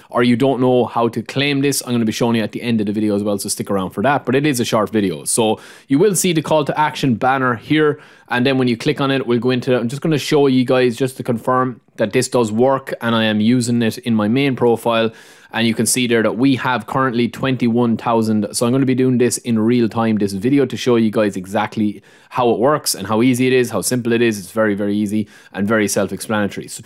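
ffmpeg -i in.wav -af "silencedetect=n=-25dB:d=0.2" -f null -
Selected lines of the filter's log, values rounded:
silence_start: 5.55
silence_end: 5.90 | silence_duration: 0.35
silence_start: 7.95
silence_end: 8.31 | silence_duration: 0.36
silence_start: 11.73
silence_end: 11.99 | silence_duration: 0.26
silence_start: 15.09
silence_end: 15.54 | silence_duration: 0.44
silence_start: 21.92
silence_end: 22.33 | silence_duration: 0.41
silence_start: 25.23
silence_end: 25.55 | silence_duration: 0.32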